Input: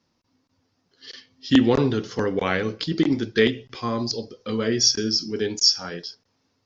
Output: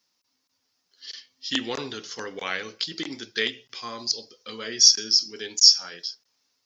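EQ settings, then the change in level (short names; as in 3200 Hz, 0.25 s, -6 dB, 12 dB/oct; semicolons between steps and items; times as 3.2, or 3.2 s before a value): tilt +4.5 dB/oct; -7.0 dB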